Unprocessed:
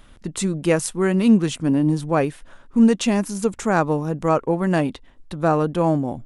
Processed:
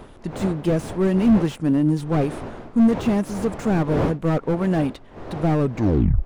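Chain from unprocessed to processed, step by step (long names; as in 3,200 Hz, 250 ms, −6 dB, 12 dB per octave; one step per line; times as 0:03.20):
turntable brake at the end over 0.67 s
wind on the microphone 600 Hz −32 dBFS
slew-rate limiting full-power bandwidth 60 Hz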